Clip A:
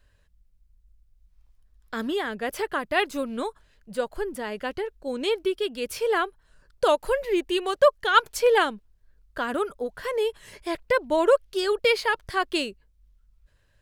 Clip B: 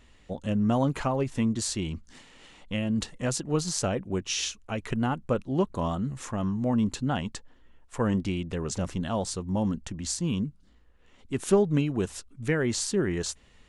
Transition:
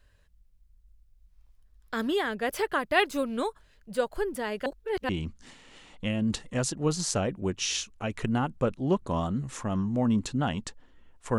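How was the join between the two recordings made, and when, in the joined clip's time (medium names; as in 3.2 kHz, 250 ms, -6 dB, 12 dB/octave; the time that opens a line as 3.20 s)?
clip A
4.66–5.09 s: reverse
5.09 s: go over to clip B from 1.77 s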